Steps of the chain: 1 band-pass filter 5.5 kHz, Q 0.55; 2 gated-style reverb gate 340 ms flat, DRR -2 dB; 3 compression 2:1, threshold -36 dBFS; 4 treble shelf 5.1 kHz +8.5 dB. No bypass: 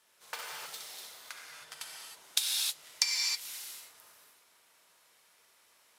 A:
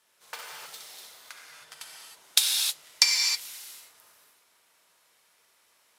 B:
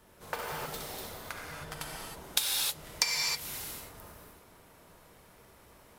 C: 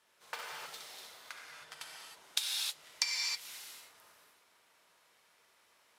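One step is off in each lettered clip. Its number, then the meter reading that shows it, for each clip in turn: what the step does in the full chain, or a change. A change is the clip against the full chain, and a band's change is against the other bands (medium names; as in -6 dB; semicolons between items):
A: 3, momentary loudness spread change +3 LU; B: 1, 1 kHz band +8.0 dB; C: 4, 8 kHz band -4.5 dB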